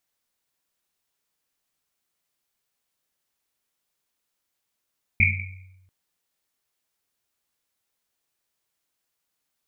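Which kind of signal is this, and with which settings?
Risset drum length 0.69 s, pitch 93 Hz, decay 1.12 s, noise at 2.3 kHz, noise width 280 Hz, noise 60%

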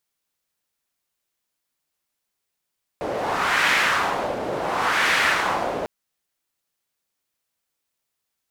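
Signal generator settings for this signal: wind-like swept noise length 2.85 s, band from 530 Hz, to 1.9 kHz, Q 1.8, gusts 2, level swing 8 dB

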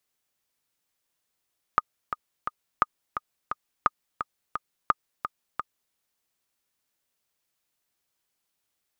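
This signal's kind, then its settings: metronome 173 bpm, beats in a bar 3, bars 4, 1.23 kHz, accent 9.5 dB -6 dBFS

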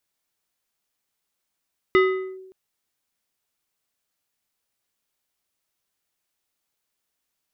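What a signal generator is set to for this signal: FM tone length 0.57 s, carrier 377 Hz, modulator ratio 4.34, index 0.81, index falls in 0.43 s linear, decay 0.98 s, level -11 dB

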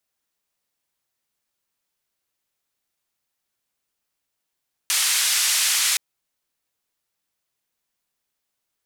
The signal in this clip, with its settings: noise band 1.8–10 kHz, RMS -20.5 dBFS 1.07 s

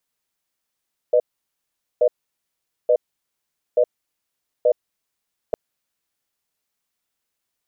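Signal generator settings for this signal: cadence 494 Hz, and 611 Hz, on 0.07 s, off 0.81 s, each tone -15 dBFS 4.41 s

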